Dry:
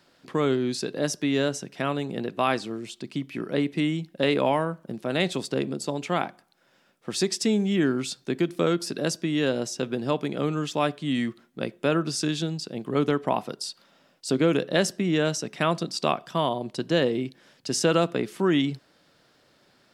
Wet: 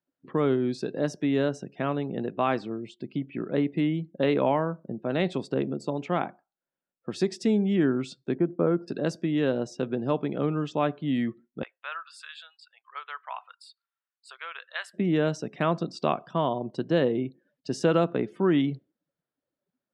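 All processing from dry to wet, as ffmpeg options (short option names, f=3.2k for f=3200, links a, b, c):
-filter_complex "[0:a]asettb=1/sr,asplit=3[a][b][c];[a]atrim=end=8.354[d];[b]atrim=start=8.35:end=8.88,asetpts=PTS-STARTPTS,afade=t=in:d=0.004:c=qsin,afade=t=out:st=0.526:d=0.004:c=qsin,lowpass=1.4k,agate=range=-33dB:threshold=-42dB:ratio=3:release=100:detection=peak,acompressor=mode=upward:threshold=-36dB:ratio=2.5:attack=3.2:release=140:knee=2.83:detection=peak[e];[c]atrim=start=8.876[f];[d][e]acrossfade=d=0.004:c1=hsin:c2=qsin[g];[g][f]acrossfade=d=0.004:c1=qsin:c2=hsin,asettb=1/sr,asplit=3[h][i][j];[h]atrim=end=11.634[k];[i]atrim=start=11.63:end=14.94,asetpts=PTS-STARTPTS,afade=t=in:d=0.004:c=qsin,afade=t=out:st=3.306:d=0.004:c=qsin,highpass=f=1.1k:w=0.5412,highpass=f=1.1k:w=1.3066,equalizer=f=5.9k:t=o:w=0.44:g=-15[l];[j]atrim=start=14.936[m];[k][l]acrossfade=d=0.004:c1=hsin:c2=qsin[n];[n][m]acrossfade=d=0.004:c1=qsin:c2=hsin,afftdn=nr=28:nf=-47,lowpass=f=1.4k:p=1"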